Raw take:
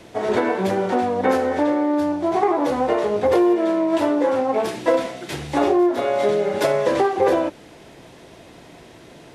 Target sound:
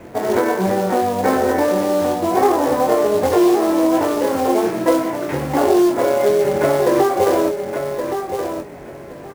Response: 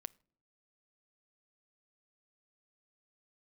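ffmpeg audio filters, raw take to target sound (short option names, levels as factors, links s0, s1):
-filter_complex "[0:a]lowpass=f=2400:w=0.5412,lowpass=f=2400:w=1.3066,aemphasis=mode=reproduction:type=75fm,asplit=2[s0][s1];[s1]acompressor=threshold=0.0562:ratio=10,volume=0.944[s2];[s0][s2]amix=inputs=2:normalize=0,acrusher=bits=4:mode=log:mix=0:aa=0.000001,asplit=2[s3][s4];[s4]adelay=22,volume=0.501[s5];[s3][s5]amix=inputs=2:normalize=0,asplit=2[s6][s7];[s7]aecho=0:1:1121|2242|3363:0.447|0.0759|0.0129[s8];[s6][s8]amix=inputs=2:normalize=0,volume=0.891"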